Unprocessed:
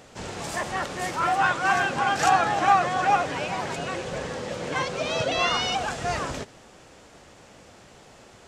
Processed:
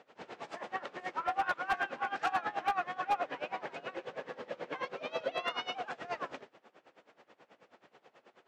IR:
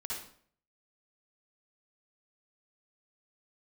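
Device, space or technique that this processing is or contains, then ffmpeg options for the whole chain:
helicopter radio: -filter_complex "[0:a]asettb=1/sr,asplit=3[link_01][link_02][link_03];[link_01]atrim=end=1.544[link_04];[link_02]atrim=start=1.54:end=3.11,asetpts=PTS-STARTPTS,afade=type=in:duration=0.004:curve=qsin,afade=type=out:start_time=1.566:duration=0.004:curve=qsin,adynamicequalizer=threshold=0.0251:dfrequency=540:dqfactor=1.1:tfrequency=540:tqfactor=1.1:attack=5:release=100:ratio=0.375:range=2.5:mode=cutabove:tftype=bell[link_05];[link_03]atrim=start=3.106[link_06];[link_04][link_05]acrossfade=duration=0.004:curve1=hsin:curve2=qsin[link_07];[link_07][link_06]acrossfade=duration=0.004:curve1=qsin:curve2=hsin,highpass=310,lowpass=2800,aeval=exprs='val(0)*pow(10,-20*(0.5-0.5*cos(2*PI*9.3*n/s))/20)':channel_layout=same,asoftclip=type=hard:threshold=-19.5dB,volume=-4.5dB"

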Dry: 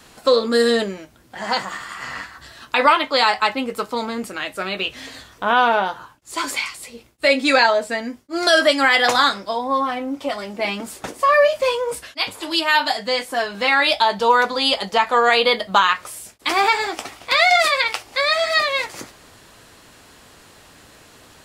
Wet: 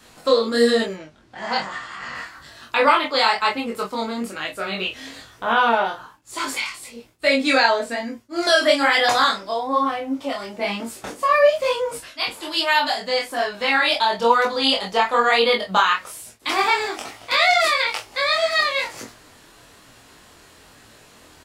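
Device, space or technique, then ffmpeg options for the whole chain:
double-tracked vocal: -filter_complex "[0:a]asettb=1/sr,asplit=3[link_01][link_02][link_03];[link_01]atrim=end=0.944[link_04];[link_02]atrim=start=0.94:end=2.15,asetpts=PTS-STARTPTS,afade=type=in:duration=0.004:curve=qsin,afade=type=out:start_time=1.206:duration=0.004:curve=qsin,lowpass=5800[link_05];[link_03]atrim=start=2.146[link_06];[link_04][link_05]acrossfade=duration=0.004:curve1=hsin:curve2=qsin[link_07];[link_07][link_06]acrossfade=duration=0.004:curve1=qsin:curve2=hsin,asplit=2[link_08][link_09];[link_09]adelay=26,volume=-4dB[link_10];[link_08][link_10]amix=inputs=2:normalize=0,flanger=delay=17.5:depth=5.9:speed=1.1"

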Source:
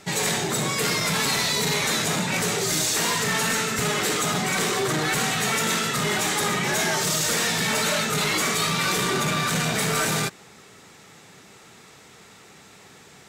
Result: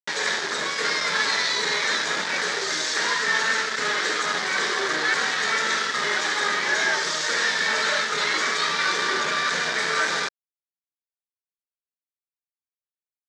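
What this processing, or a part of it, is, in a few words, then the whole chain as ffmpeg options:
hand-held game console: -af "acrusher=bits=3:mix=0:aa=0.000001,highpass=460,equalizer=frequency=730:width_type=q:width=4:gain=-7,equalizer=frequency=1700:width_type=q:width=4:gain=7,equalizer=frequency=2700:width_type=q:width=4:gain=-7,lowpass=frequency=5700:width=0.5412,lowpass=frequency=5700:width=1.3066"

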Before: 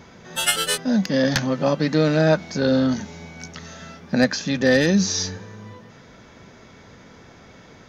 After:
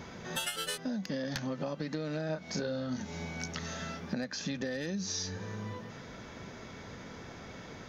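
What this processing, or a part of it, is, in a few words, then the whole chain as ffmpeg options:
serial compression, leveller first: -filter_complex "[0:a]equalizer=frequency=8300:width=5.6:gain=-3.5,acompressor=threshold=-20dB:ratio=2.5,acompressor=threshold=-33dB:ratio=8,asettb=1/sr,asplit=3[link_01][link_02][link_03];[link_01]atrim=end=2.264[link_04];[link_02]atrim=start=2.26:end=3.02,asetpts=PTS-STARTPTS,afade=type=in:duration=0.004:curve=qsin,afade=type=out:start_time=0.756:duration=0.004:curve=qsin,asplit=2[link_05][link_06];[link_06]adelay=32,volume=-5.5dB[link_07];[link_05][link_07]amix=inputs=2:normalize=0,atrim=end_sample=33516[link_08];[link_03]atrim=start=3.016[link_09];[link_04][link_08]acrossfade=duration=0.004:curve1=hsin:curve2=qsin[link_10];[link_10][link_09]acrossfade=duration=0.004:curve1=qsin:curve2=hsin"

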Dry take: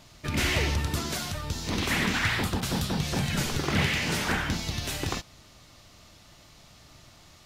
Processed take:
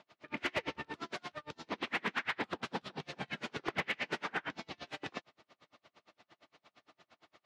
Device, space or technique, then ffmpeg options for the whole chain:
helicopter radio: -af "highpass=330,lowpass=2600,aeval=exprs='val(0)*pow(10,-36*(0.5-0.5*cos(2*PI*8.7*n/s))/20)':channel_layout=same,asoftclip=type=hard:threshold=-25.5dB"

